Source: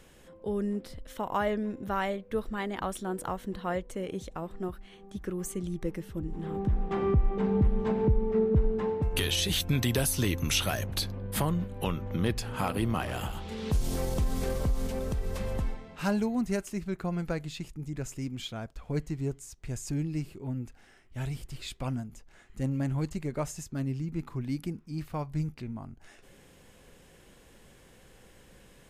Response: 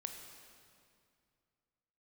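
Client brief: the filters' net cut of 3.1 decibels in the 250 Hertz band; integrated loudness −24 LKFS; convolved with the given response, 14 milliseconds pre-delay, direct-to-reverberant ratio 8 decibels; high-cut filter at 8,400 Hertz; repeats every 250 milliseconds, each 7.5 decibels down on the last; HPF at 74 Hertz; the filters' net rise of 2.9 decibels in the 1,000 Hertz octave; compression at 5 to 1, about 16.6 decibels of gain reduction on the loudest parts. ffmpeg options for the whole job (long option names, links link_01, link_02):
-filter_complex "[0:a]highpass=74,lowpass=8400,equalizer=frequency=250:width_type=o:gain=-4.5,equalizer=frequency=1000:width_type=o:gain=4,acompressor=threshold=-42dB:ratio=5,aecho=1:1:250|500|750|1000|1250:0.422|0.177|0.0744|0.0312|0.0131,asplit=2[link_01][link_02];[1:a]atrim=start_sample=2205,adelay=14[link_03];[link_02][link_03]afir=irnorm=-1:irlink=0,volume=-6dB[link_04];[link_01][link_04]amix=inputs=2:normalize=0,volume=19.5dB"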